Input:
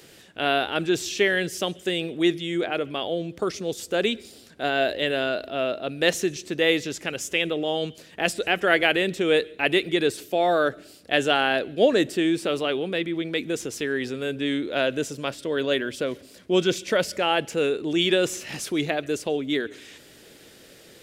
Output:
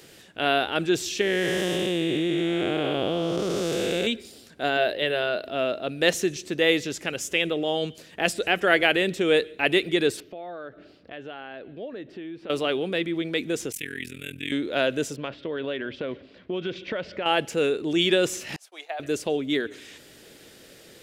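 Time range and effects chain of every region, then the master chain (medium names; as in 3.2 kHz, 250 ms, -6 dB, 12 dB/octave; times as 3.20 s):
1.21–4.07 s: spectral blur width 464 ms + level flattener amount 70%
4.77–5.46 s: high-pass 110 Hz + peaking EQ 7 kHz -14.5 dB 0.36 oct + band-stop 270 Hz, Q 5.7
10.20–12.50 s: compression 2.5:1, threshold -41 dBFS + distance through air 290 m
13.72–14.52 s: FFT filter 180 Hz 0 dB, 330 Hz -9 dB, 890 Hz -21 dB, 2.3 kHz +7 dB, 4.9 kHz -6 dB, 11 kHz +13 dB + AM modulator 42 Hz, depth 90%
15.16–17.26 s: low-pass 3.5 kHz 24 dB/octave + compression 5:1, threshold -26 dBFS
18.56–19.00 s: expander -26 dBFS + ladder high-pass 650 Hz, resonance 55%
whole clip: none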